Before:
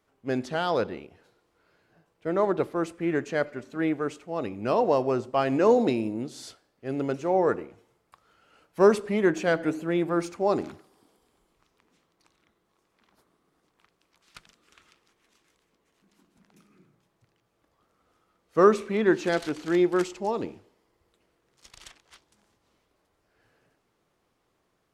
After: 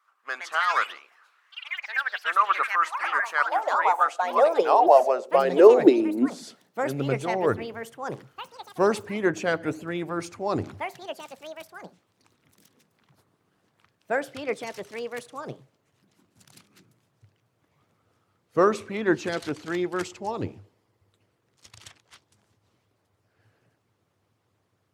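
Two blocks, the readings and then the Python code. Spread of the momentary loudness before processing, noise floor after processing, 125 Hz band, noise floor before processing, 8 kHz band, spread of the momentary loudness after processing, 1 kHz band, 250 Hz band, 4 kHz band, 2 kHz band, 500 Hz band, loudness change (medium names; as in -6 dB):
13 LU, -72 dBFS, -1.0 dB, -74 dBFS, +2.5 dB, 20 LU, +7.0 dB, -0.5 dB, +4.0 dB, +6.5 dB, +2.0 dB, +2.0 dB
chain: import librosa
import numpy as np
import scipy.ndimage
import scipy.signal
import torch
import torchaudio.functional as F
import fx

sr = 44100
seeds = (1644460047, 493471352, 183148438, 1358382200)

y = fx.hpss(x, sr, part='harmonic', gain_db=-9)
y = fx.filter_sweep_highpass(y, sr, from_hz=1200.0, to_hz=100.0, start_s=4.2, end_s=7.51, q=6.1)
y = fx.echo_pitch(y, sr, ms=191, semitones=5, count=3, db_per_echo=-6.0)
y = y * 10.0 ** (2.0 / 20.0)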